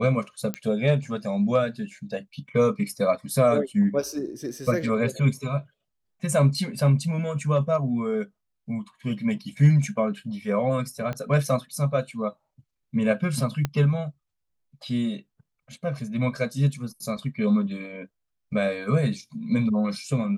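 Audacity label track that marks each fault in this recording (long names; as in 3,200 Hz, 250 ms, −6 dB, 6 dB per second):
0.540000	0.540000	click −14 dBFS
11.130000	11.130000	click −19 dBFS
13.650000	13.650000	click −12 dBFS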